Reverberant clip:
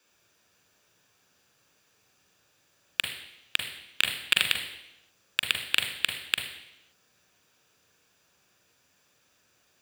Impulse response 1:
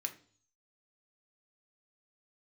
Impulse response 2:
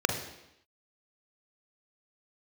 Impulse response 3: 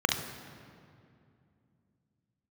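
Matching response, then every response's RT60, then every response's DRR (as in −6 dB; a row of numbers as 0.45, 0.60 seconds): 2; 0.45, 0.85, 2.5 seconds; 5.0, 3.5, 2.0 decibels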